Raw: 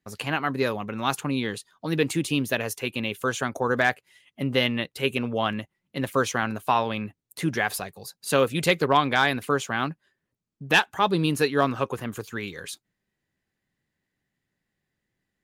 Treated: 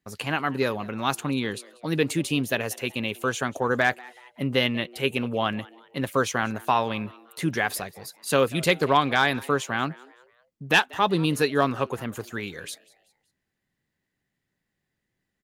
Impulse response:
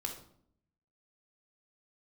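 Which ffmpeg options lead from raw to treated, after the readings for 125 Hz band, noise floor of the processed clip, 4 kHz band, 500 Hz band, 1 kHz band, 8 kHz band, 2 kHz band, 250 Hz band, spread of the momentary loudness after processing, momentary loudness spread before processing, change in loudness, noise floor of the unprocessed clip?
0.0 dB, −81 dBFS, 0.0 dB, 0.0 dB, 0.0 dB, 0.0 dB, 0.0 dB, 0.0 dB, 13 LU, 12 LU, 0.0 dB, −83 dBFS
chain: -filter_complex "[0:a]asplit=4[link_01][link_02][link_03][link_04];[link_02]adelay=189,afreqshift=120,volume=-22.5dB[link_05];[link_03]adelay=378,afreqshift=240,volume=-29.8dB[link_06];[link_04]adelay=567,afreqshift=360,volume=-37.2dB[link_07];[link_01][link_05][link_06][link_07]amix=inputs=4:normalize=0"

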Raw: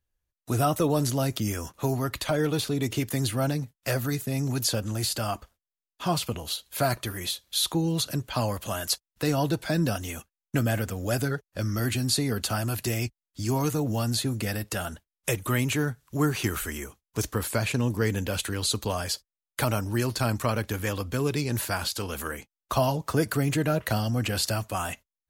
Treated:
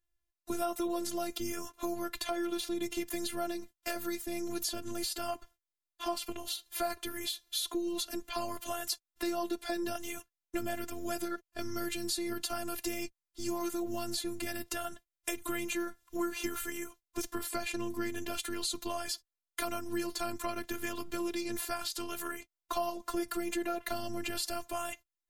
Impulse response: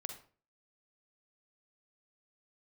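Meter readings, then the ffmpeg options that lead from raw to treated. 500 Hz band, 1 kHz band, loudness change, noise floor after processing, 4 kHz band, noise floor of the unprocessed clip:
−7.5 dB, −6.5 dB, −8.5 dB, below −85 dBFS, −7.5 dB, below −85 dBFS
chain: -af "afftfilt=real='hypot(re,im)*cos(PI*b)':imag='0':win_size=512:overlap=0.75,acompressor=threshold=-32dB:ratio=2.5"

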